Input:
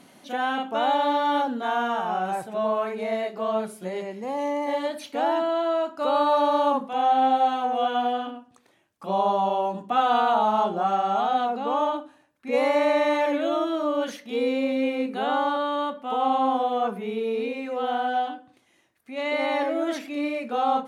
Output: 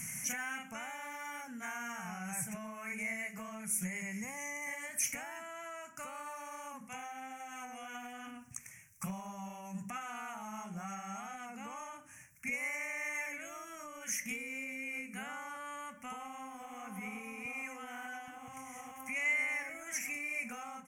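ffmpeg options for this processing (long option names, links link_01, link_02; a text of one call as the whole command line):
ffmpeg -i in.wav -filter_complex "[0:a]asplit=2[link_01][link_02];[link_02]afade=type=in:start_time=16.18:duration=0.01,afade=type=out:start_time=16.76:duration=0.01,aecho=0:1:430|860|1290|1720|2150|2580|3010|3440|3870|4300|4730|5160:0.473151|0.354863|0.266148|0.199611|0.149708|0.112281|0.0842108|0.0631581|0.0473686|0.0355264|0.0266448|0.0199836[link_03];[link_01][link_03]amix=inputs=2:normalize=0,asettb=1/sr,asplit=3[link_04][link_05][link_06];[link_04]atrim=end=17.454[link_07];[link_05]atrim=start=17.45:end=18.28,asetpts=PTS-STARTPTS,afade=type=in:duration=0.004:curve=qsin,afade=type=out:start_time=0.826:duration=0.004:curve=qsin,highpass=150[link_08];[link_06]atrim=start=18.276[link_09];[link_07][link_08]acrossfade=duration=0.004:curve1=hsin:curve2=qsin[link_10];[link_10][link_09]acrossfade=duration=0.004:curve1=qsin:curve2=hsin,lowshelf=frequency=370:gain=6.5,acompressor=threshold=-34dB:ratio=12,firequalizer=gain_entry='entry(150,0);entry(310,-27);entry(2200,8);entry(3800,-30);entry(5800,13)':delay=0.05:min_phase=1,volume=7.5dB" out.wav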